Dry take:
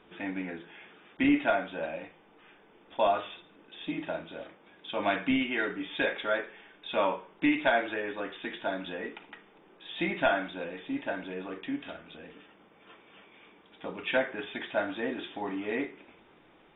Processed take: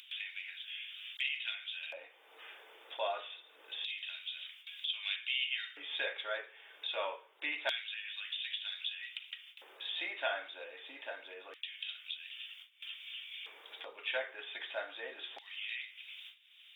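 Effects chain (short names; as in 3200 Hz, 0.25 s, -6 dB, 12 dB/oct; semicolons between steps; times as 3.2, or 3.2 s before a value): LFO high-pass square 0.26 Hz 480–3000 Hz; gate with hold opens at -50 dBFS; upward compressor, threshold -31 dBFS; differentiator; gain +4.5 dB; Opus 128 kbps 48000 Hz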